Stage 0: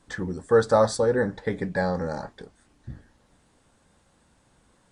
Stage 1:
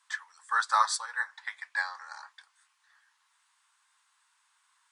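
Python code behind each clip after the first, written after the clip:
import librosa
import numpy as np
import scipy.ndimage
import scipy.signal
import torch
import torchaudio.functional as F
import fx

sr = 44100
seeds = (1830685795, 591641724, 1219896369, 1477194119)

y = scipy.signal.sosfilt(scipy.signal.ellip(4, 1.0, 60, 1000.0, 'highpass', fs=sr, output='sos'), x)
y = fx.upward_expand(y, sr, threshold_db=-42.0, expansion=1.5)
y = F.gain(torch.from_numpy(y), 6.0).numpy()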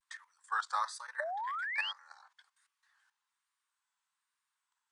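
y = fx.level_steps(x, sr, step_db=14)
y = fx.spec_paint(y, sr, seeds[0], shape='rise', start_s=1.2, length_s=0.72, low_hz=560.0, high_hz=3200.0, level_db=-34.0)
y = fx.vibrato(y, sr, rate_hz=1.2, depth_cents=94.0)
y = F.gain(torch.from_numpy(y), -3.5).numpy()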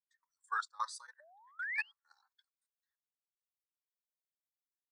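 y = fx.bin_expand(x, sr, power=1.5)
y = fx.step_gate(y, sr, bpm=132, pattern='..xxxx.xxx....xx', floor_db=-24.0, edge_ms=4.5)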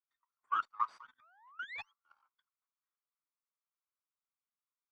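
y = fx.lower_of_two(x, sr, delay_ms=0.87)
y = fx.bandpass_q(y, sr, hz=1200.0, q=2.0)
y = fx.air_absorb(y, sr, metres=56.0)
y = F.gain(torch.from_numpy(y), 5.0).numpy()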